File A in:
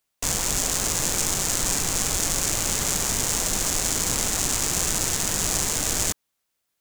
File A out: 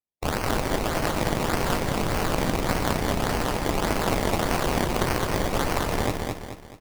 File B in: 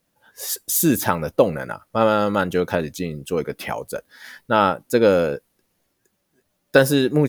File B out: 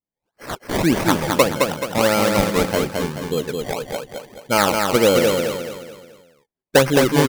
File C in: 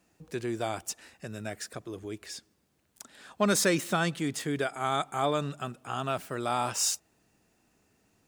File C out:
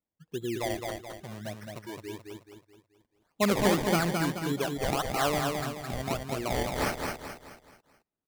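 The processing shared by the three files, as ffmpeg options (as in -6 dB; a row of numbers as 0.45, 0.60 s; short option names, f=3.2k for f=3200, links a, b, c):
-filter_complex "[0:a]afftdn=nr=25:nf=-31,acrusher=samples=23:mix=1:aa=0.000001:lfo=1:lforange=23:lforate=1.7,asplit=2[a][b];[b]aecho=0:1:215|430|645|860|1075:0.631|0.265|0.111|0.0467|0.0196[c];[a][c]amix=inputs=2:normalize=0"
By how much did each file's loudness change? -3.5, +1.5, +0.5 LU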